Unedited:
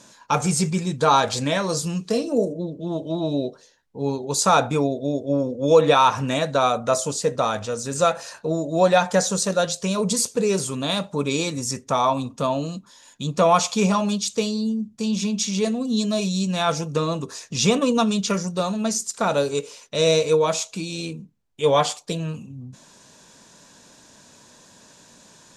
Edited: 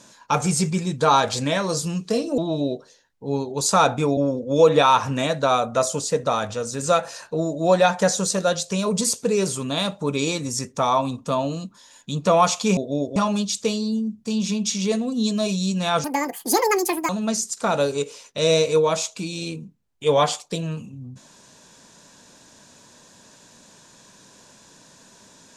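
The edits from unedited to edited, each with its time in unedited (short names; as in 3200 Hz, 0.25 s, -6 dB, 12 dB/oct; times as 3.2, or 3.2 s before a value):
2.38–3.11 cut
4.9–5.29 move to 13.89
16.77–18.66 speed 180%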